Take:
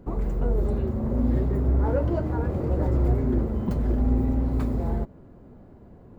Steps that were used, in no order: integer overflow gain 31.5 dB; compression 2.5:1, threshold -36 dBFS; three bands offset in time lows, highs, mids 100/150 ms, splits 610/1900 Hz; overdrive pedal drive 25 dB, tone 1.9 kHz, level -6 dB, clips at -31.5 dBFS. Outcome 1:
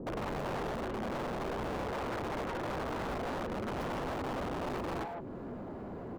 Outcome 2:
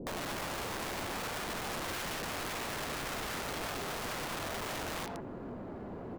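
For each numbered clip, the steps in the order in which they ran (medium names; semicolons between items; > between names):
compression > three bands offset in time > integer overflow > overdrive pedal; overdrive pedal > three bands offset in time > integer overflow > compression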